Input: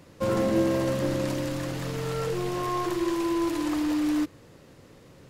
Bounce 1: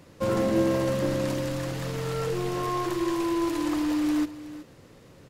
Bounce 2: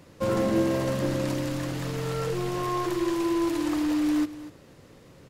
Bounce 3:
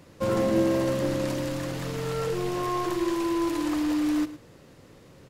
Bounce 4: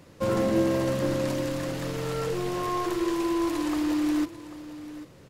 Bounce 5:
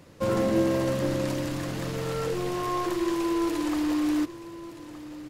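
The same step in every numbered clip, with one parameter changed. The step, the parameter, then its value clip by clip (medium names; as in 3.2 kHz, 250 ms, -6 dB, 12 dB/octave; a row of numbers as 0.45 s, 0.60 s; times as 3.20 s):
delay, time: 373 ms, 243 ms, 109 ms, 793 ms, 1218 ms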